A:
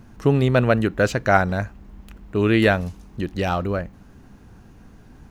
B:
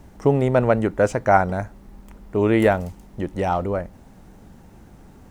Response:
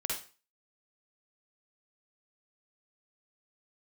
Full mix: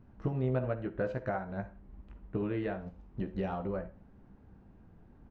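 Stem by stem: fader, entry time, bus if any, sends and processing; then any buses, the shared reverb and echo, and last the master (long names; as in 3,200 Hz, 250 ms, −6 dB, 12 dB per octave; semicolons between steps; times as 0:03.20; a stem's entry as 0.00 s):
−5.5 dB, 0.00 s, send −11 dB, downward compressor 6 to 1, threshold −26 dBFS, peak gain reduction 15 dB
−10.5 dB, 16 ms, send −5.5 dB, downward compressor 4 to 1, threshold −27 dBFS, peak gain reduction 14.5 dB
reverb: on, RT60 0.35 s, pre-delay 46 ms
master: head-to-tape spacing loss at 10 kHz 35 dB; expander for the loud parts 1.5 to 1, over −44 dBFS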